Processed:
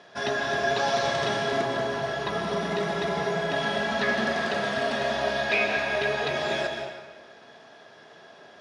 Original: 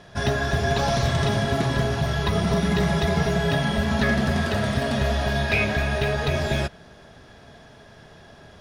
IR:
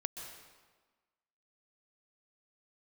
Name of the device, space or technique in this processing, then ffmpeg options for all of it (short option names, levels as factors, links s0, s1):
supermarket ceiling speaker: -filter_complex "[0:a]highpass=330,lowpass=6200[s0];[1:a]atrim=start_sample=2205[s1];[s0][s1]afir=irnorm=-1:irlink=0,asettb=1/sr,asplit=3[s2][s3][s4];[s2]atrim=end=1.614[s5];[s3]atrim=start=1.61:end=3.56,asetpts=PTS-STARTPTS,afade=t=in:d=0.004:c=qsin,afade=t=out:st=1.946:d=0.004:c=qsin,equalizer=f=4000:w=0.47:g=-4[s6];[s4]atrim=start=3.556[s7];[s5][s6]acrossfade=d=0.004:c1=hsin:c2=qsin[s8];[s8][s7]acrossfade=d=0.004:c1=qsin:c2=hsin"